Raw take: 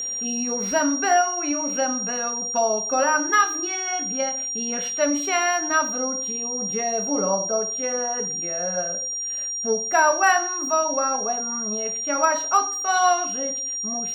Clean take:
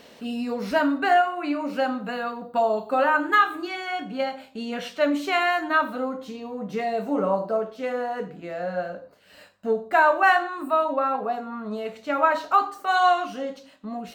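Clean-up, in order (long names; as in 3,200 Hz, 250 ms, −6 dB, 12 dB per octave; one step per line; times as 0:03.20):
clipped peaks rebuilt −8.5 dBFS
notch filter 5,700 Hz, Q 30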